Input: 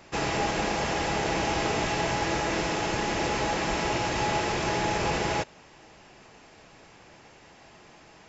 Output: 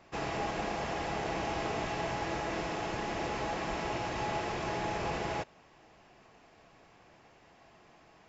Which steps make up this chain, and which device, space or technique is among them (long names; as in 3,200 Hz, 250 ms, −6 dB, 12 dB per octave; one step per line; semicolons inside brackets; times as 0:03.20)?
inside a helmet (high-shelf EQ 5,500 Hz −9 dB; hollow resonant body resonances 700/1,100 Hz, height 6 dB)
level −7.5 dB